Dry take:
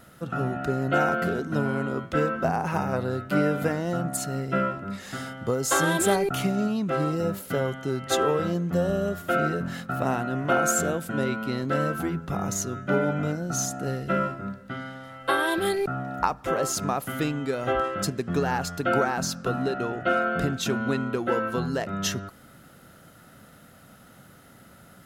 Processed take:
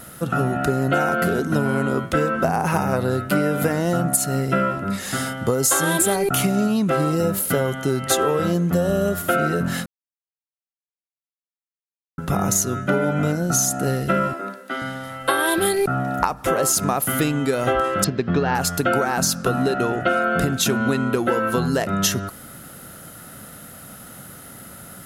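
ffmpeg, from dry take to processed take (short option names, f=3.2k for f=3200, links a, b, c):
-filter_complex "[0:a]asettb=1/sr,asplit=3[a][b][c];[a]atrim=end=14.334[d];[b]atrim=start=14.33:end=14.82,asetpts=PTS-STARTPTS,afade=t=in:d=0.004:c=qsin,afade=t=out:st=0.486:d=0.004:c=qsin,highpass=f=290:w=0.5412,highpass=f=290:w=1.3066[e];[c]atrim=start=14.816[f];[d][e]acrossfade=d=0.004:c1=hsin:c2=qsin[g];[g][f]acrossfade=d=0.004:c1=qsin:c2=hsin,asettb=1/sr,asplit=3[h][i][j];[h]atrim=end=18.044[k];[i]atrim=start=18.04:end=18.55,asetpts=PTS-STARTPTS,afade=t=in:d=0.004:c=qsin,afade=t=out:st=0.506:d=0.004:c=qsin,lowpass=f=4.4k:w=0.5412,lowpass=f=4.4k:w=1.3066[l];[j]atrim=start=18.546[m];[k][l]acrossfade=d=0.004:c1=hsin:c2=qsin[n];[n][m]acrossfade=d=0.004:c1=qsin:c2=hsin,asplit=3[o][p][q];[o]atrim=end=9.86,asetpts=PTS-STARTPTS,afade=t=out:st=9.856:d=0.004:c=hsin[r];[p]atrim=start=9.86:end=12.18,asetpts=PTS-STARTPTS,volume=0[s];[q]atrim=start=12.18,asetpts=PTS-STARTPTS,afade=t=in:d=0.004:c=hsin[t];[r][s][t]concat=n=3:v=0:a=1,equalizer=f=11k:w=0.89:g=11,acompressor=threshold=-25dB:ratio=6,volume=9dB"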